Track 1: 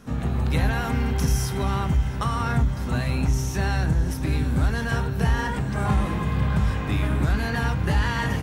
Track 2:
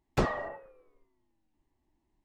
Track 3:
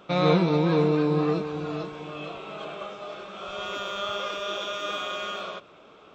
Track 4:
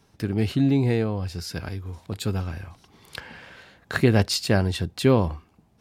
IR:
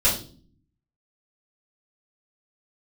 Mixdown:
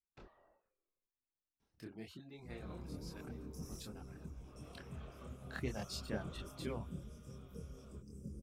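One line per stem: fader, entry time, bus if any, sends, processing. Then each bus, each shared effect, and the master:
-16.5 dB, 2.35 s, no send, FFT band-reject 570–4700 Hz
-18.5 dB, 0.00 s, no send, Chebyshev low-pass 4.4 kHz, order 2; compression 2:1, threshold -40 dBFS, peak gain reduction 9 dB
4.08 s -23 dB -> 4.70 s -12.5 dB -> 6.25 s -12.5 dB -> 6.99 s -23 dB, 2.40 s, no send, treble shelf 4.8 kHz -12 dB
-15.5 dB, 1.60 s, no send, reverb removal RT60 1.7 s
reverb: none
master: harmonic-percussive split harmonic -13 dB; chorus voices 6, 1.3 Hz, delay 26 ms, depth 3 ms

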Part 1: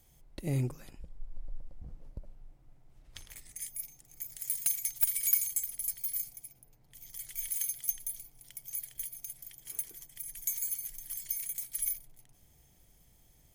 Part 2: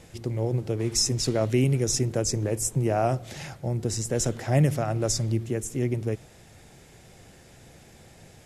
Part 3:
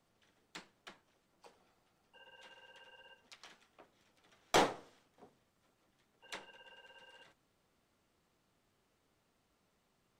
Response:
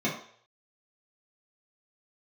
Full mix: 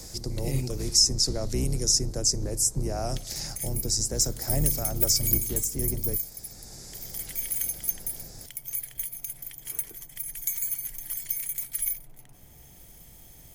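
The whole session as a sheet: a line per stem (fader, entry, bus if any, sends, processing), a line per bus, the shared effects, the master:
+1.0 dB, 0.00 s, no send, none
-7.0 dB, 0.00 s, no send, octave divider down 2 oct, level +3 dB; resonant high shelf 3.8 kHz +9 dB, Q 3
-8.5 dB, 0.95 s, no send, saturation -27.5 dBFS, distortion -10 dB; band-pass filter 4.5 kHz, Q 1.4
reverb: none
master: treble shelf 12 kHz +5.5 dB; three bands compressed up and down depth 40%

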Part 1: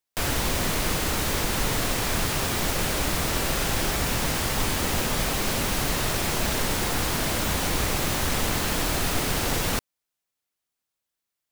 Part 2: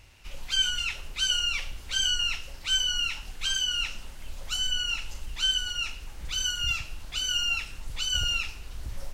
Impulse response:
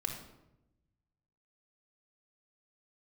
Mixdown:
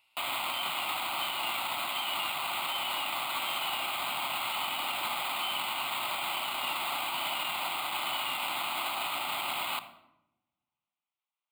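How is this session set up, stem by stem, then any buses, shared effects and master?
+2.0 dB, 0.00 s, send -10.5 dB, sample-and-hold 8×; upward expansion 1.5:1, over -44 dBFS
-8.0 dB, 0.00 s, no send, none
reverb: on, RT60 0.90 s, pre-delay 3 ms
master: high-pass 610 Hz 12 dB/octave; static phaser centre 1.7 kHz, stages 6; peak limiter -22.5 dBFS, peak gain reduction 7.5 dB

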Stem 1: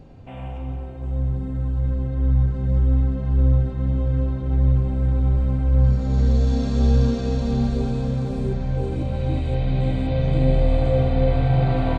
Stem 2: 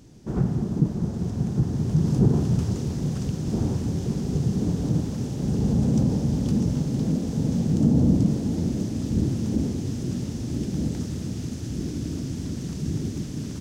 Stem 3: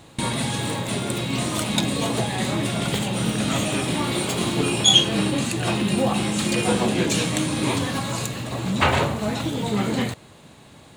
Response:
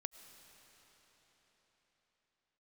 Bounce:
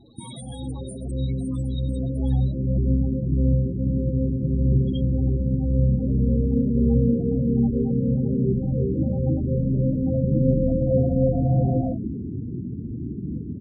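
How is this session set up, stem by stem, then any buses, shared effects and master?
-6.0 dB, 0.00 s, no bus, send -21 dB, band-pass filter 300 Hz, Q 0.64; level rider gain up to 9.5 dB
+1.5 dB, 2.50 s, bus A, send -10.5 dB, low-pass 2.5 kHz 24 dB/octave
-2.5 dB, 0.00 s, bus A, no send, compression 6:1, threshold -26 dBFS, peak gain reduction 15 dB
bus A: 0.0 dB, treble shelf 3.5 kHz +11 dB; compression 12:1, threshold -30 dBFS, peak gain reduction 18.5 dB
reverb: on, pre-delay 65 ms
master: loudest bins only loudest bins 16

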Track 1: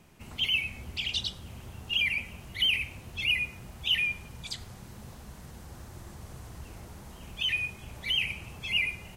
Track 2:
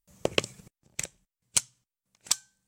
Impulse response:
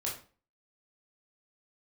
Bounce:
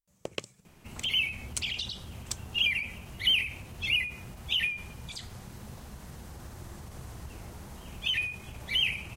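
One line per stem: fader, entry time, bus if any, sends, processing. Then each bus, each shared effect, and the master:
+1.5 dB, 0.65 s, no send, endings held to a fixed fall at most 100 dB/s
-10.5 dB, 0.00 s, no send, none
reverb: none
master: none

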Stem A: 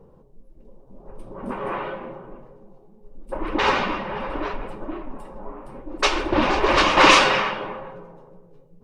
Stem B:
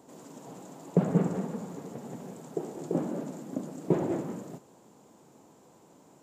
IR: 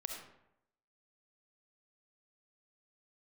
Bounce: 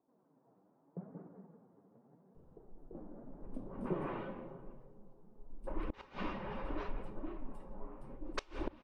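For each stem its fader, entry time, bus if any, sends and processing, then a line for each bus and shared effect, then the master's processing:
-16.5 dB, 2.35 s, no send, bass shelf 280 Hz +9.5 dB
2.78 s -20 dB -> 3.45 s -9.5 dB, 0.00 s, no send, low-pass 1.5 kHz 24 dB/octave; flange 0.81 Hz, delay 2.6 ms, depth 7.8 ms, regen +46%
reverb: none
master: inverted gate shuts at -24 dBFS, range -27 dB

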